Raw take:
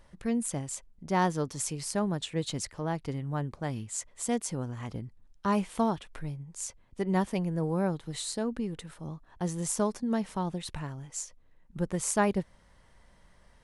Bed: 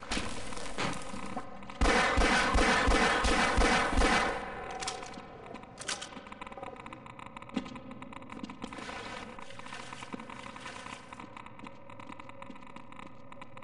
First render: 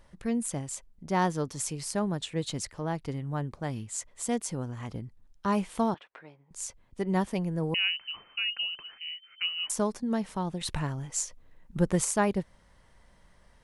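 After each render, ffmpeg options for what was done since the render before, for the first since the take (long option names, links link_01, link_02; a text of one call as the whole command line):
ffmpeg -i in.wav -filter_complex "[0:a]asettb=1/sr,asplit=3[link_01][link_02][link_03];[link_01]atrim=end=5.944[link_04];[link_02]atrim=start=5.94:end=6.51,asetpts=PTS-STARTPTS,afade=type=in:duration=0.004:curve=qsin,afade=type=out:start_time=0.566:duration=0.004:curve=qsin,highpass=490,lowpass=2600[link_05];[link_03]atrim=start=6.506[link_06];[link_04][link_05]acrossfade=duration=0.004:curve1=hsin:curve2=qsin[link_07];[link_07][link_06]acrossfade=duration=0.004:curve1=qsin:curve2=hsin,asettb=1/sr,asplit=3[link_08][link_09][link_10];[link_08]atrim=end=7.744[link_11];[link_09]atrim=start=7.74:end=9.7,asetpts=PTS-STARTPTS,afade=type=in:duration=0.004:curve=qsin,afade=type=out:start_time=1.956:duration=0.004:curve=qsin,lowpass=frequency=2600:width_type=q:width=0.5098,lowpass=frequency=2600:width_type=q:width=0.6013,lowpass=frequency=2600:width_type=q:width=0.9,lowpass=frequency=2600:width_type=q:width=2.563,afreqshift=-3100[link_12];[link_10]atrim=start=9.696[link_13];[link_11][link_12]acrossfade=duration=0.004:curve1=hsin:curve2=qsin[link_14];[link_14][link_13]acrossfade=duration=0.004:curve1=qsin:curve2=hsin,asettb=1/sr,asplit=3[link_15][link_16][link_17];[link_15]atrim=end=10.614[link_18];[link_16]atrim=start=10.61:end=12.05,asetpts=PTS-STARTPTS,afade=type=in:duration=0.004:curve=qsin,afade=type=out:start_time=1.436:duration=0.004:curve=qsin,acontrast=47[link_19];[link_17]atrim=start=12.046[link_20];[link_18][link_19]acrossfade=duration=0.004:curve1=hsin:curve2=qsin[link_21];[link_21][link_20]acrossfade=duration=0.004:curve1=qsin:curve2=hsin" out.wav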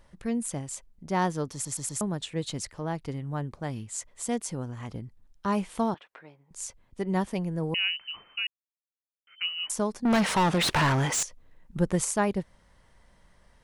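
ffmpeg -i in.wav -filter_complex "[0:a]asettb=1/sr,asplit=3[link_01][link_02][link_03];[link_01]atrim=end=10.054[link_04];[link_02]atrim=start=10.05:end=11.23,asetpts=PTS-STARTPTS,afade=type=in:duration=0.004:curve=qsin,afade=type=out:start_time=1.176:duration=0.004:curve=qsin,asplit=2[link_05][link_06];[link_06]highpass=frequency=720:poles=1,volume=33dB,asoftclip=type=tanh:threshold=-15dB[link_07];[link_05][link_07]amix=inputs=2:normalize=0,lowpass=frequency=3700:poles=1,volume=-6dB[link_08];[link_03]atrim=start=11.226[link_09];[link_04][link_08]acrossfade=duration=0.004:curve1=hsin:curve2=qsin[link_10];[link_10][link_09]acrossfade=duration=0.004:curve1=qsin:curve2=hsin,asplit=7[link_11][link_12][link_13][link_14][link_15][link_16][link_17];[link_11]atrim=end=1.652[link_18];[link_12]atrim=start=1.528:end=1.652[link_19];[link_13]atrim=start=1.528:end=1.652[link_20];[link_14]atrim=start=1.528:end=1.652[link_21];[link_15]atrim=start=2.008:end=8.47,asetpts=PTS-STARTPTS,afade=type=out:start_time=6.458:duration=0.004:curve=hsin[link_22];[link_16]atrim=start=8.47:end=9.27,asetpts=PTS-STARTPTS,volume=0[link_23];[link_17]atrim=start=9.27,asetpts=PTS-STARTPTS,afade=type=in:duration=0.004:curve=hsin[link_24];[link_18][link_19]acrossfade=duration=0.004:curve1=hsin:curve2=hsin[link_25];[link_25][link_20]acrossfade=duration=0.004:curve1=hsin:curve2=hsin[link_26];[link_26][link_21]acrossfade=duration=0.004:curve1=hsin:curve2=hsin[link_27];[link_22][link_23][link_24]concat=n=3:v=0:a=1[link_28];[link_27][link_28]acrossfade=duration=0.004:curve1=hsin:curve2=hsin" out.wav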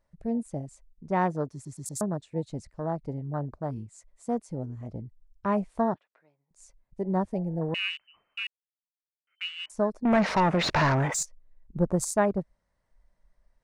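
ffmpeg -i in.wav -af "afwtdn=0.0158,equalizer=frequency=630:width_type=o:width=0.33:gain=6,equalizer=frequency=3150:width_type=o:width=0.33:gain=-7,equalizer=frequency=12500:width_type=o:width=0.33:gain=-10" out.wav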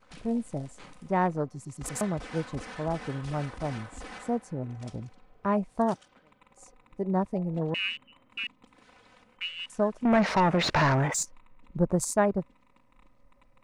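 ffmpeg -i in.wav -i bed.wav -filter_complex "[1:a]volume=-16.5dB[link_01];[0:a][link_01]amix=inputs=2:normalize=0" out.wav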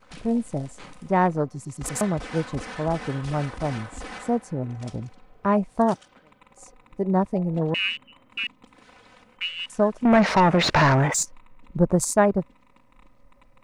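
ffmpeg -i in.wav -af "volume=5.5dB" out.wav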